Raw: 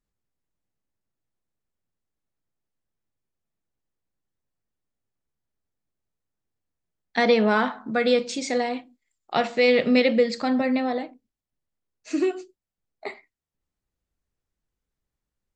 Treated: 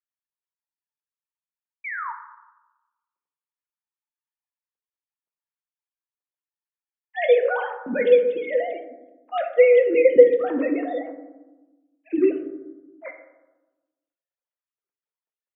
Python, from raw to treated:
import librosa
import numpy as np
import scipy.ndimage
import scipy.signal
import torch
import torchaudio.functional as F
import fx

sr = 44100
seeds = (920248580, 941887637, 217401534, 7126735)

y = fx.sine_speech(x, sr)
y = fx.spec_paint(y, sr, seeds[0], shape='fall', start_s=1.84, length_s=0.28, low_hz=870.0, high_hz=2400.0, level_db=-33.0)
y = fx.rev_fdn(y, sr, rt60_s=1.1, lf_ratio=1.5, hf_ratio=0.3, size_ms=33.0, drr_db=4.0)
y = y * librosa.db_to_amplitude(1.5)